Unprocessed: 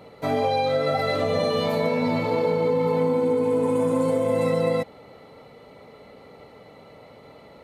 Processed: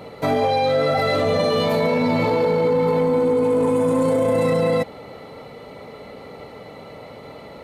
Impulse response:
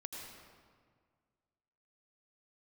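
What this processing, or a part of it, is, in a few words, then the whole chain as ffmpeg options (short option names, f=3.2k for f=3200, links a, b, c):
soft clipper into limiter: -af "asoftclip=type=tanh:threshold=-13dB,alimiter=limit=-21dB:level=0:latency=1:release=14,volume=8.5dB"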